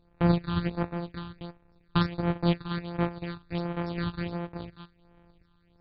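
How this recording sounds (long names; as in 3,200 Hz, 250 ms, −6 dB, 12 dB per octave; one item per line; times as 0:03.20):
a buzz of ramps at a fixed pitch in blocks of 256 samples
phaser sweep stages 6, 1.4 Hz, lowest notch 550–4,900 Hz
MP2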